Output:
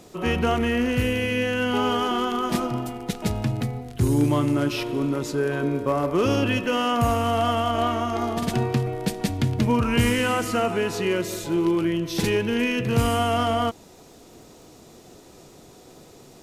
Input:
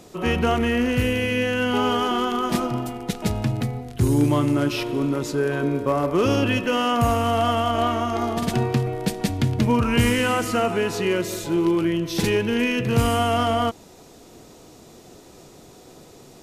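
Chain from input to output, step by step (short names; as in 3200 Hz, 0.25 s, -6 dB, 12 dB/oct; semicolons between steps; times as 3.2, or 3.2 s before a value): crackle 82/s -47 dBFS; gain -1.5 dB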